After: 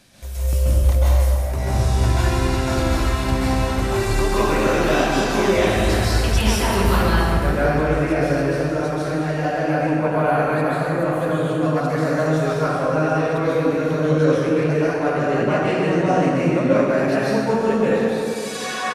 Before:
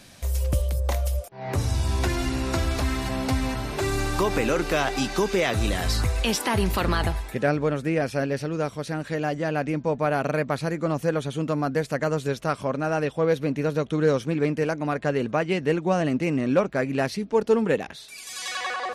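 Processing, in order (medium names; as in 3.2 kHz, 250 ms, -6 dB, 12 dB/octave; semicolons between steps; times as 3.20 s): 9.78–11.49 s: peaking EQ 5.6 kHz -13.5 dB 0.38 oct; feedback delay 713 ms, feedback 47%, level -21 dB; plate-style reverb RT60 2.7 s, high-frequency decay 0.55×, pre-delay 120 ms, DRR -10 dB; trim -5 dB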